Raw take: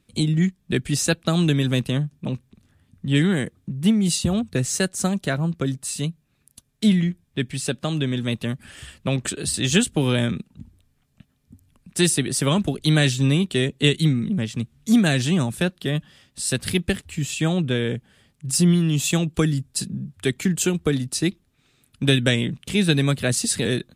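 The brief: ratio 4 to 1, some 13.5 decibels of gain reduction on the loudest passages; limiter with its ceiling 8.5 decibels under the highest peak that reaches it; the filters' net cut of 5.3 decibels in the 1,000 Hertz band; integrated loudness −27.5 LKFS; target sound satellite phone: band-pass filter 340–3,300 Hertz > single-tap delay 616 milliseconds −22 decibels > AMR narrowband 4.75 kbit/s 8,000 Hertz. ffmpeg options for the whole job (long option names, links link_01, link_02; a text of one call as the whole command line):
ffmpeg -i in.wav -af "equalizer=frequency=1000:width_type=o:gain=-7.5,acompressor=threshold=-30dB:ratio=4,alimiter=limit=-24dB:level=0:latency=1,highpass=340,lowpass=3300,aecho=1:1:616:0.0794,volume=16dB" -ar 8000 -c:a libopencore_amrnb -b:a 4750 out.amr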